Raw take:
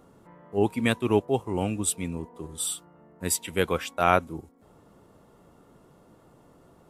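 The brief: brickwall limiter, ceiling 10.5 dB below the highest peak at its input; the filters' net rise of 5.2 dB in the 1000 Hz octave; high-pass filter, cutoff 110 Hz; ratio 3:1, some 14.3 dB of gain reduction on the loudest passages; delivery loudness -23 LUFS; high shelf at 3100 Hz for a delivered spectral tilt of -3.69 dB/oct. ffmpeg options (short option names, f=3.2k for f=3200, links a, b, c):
-af "highpass=110,equalizer=f=1k:t=o:g=7,highshelf=f=3.1k:g=4,acompressor=threshold=-30dB:ratio=3,volume=13.5dB,alimiter=limit=-10dB:level=0:latency=1"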